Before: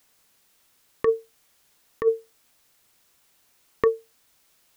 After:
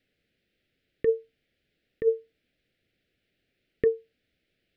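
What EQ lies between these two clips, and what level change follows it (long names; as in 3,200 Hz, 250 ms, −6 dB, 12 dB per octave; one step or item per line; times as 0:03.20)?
Butterworth band-reject 1,000 Hz, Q 0.76
high-frequency loss of the air 420 metres
0.0 dB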